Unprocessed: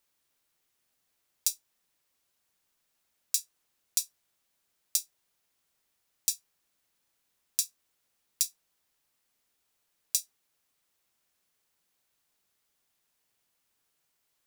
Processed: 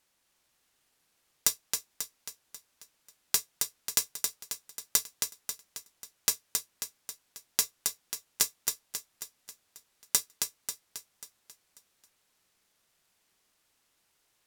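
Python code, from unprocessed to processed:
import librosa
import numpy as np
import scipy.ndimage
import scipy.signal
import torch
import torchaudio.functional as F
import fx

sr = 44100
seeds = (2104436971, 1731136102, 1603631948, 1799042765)

y = fx.echo_feedback(x, sr, ms=270, feedback_pct=53, wet_db=-5.0)
y = np.repeat(y[::2], 2)[:len(y)]
y = y * librosa.db_to_amplitude(2.0)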